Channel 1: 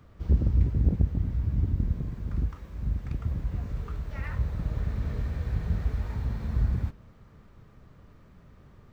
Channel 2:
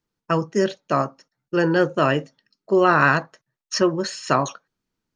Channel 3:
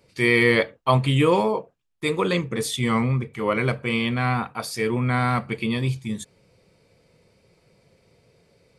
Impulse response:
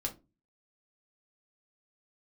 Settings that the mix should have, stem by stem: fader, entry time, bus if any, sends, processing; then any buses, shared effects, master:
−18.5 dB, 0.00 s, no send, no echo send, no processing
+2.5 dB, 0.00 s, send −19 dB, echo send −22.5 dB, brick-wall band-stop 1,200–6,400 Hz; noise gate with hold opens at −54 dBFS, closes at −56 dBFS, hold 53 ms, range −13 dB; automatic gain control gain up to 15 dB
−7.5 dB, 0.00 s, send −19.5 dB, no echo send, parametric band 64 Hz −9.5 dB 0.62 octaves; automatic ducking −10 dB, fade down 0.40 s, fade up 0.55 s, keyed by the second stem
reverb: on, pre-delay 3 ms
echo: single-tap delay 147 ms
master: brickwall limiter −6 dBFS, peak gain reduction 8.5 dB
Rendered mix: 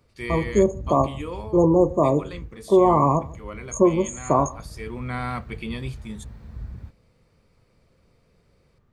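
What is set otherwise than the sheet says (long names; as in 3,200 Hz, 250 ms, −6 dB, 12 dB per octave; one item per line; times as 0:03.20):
stem 1 −18.5 dB → −10.0 dB
stem 2 +2.5 dB → −5.0 dB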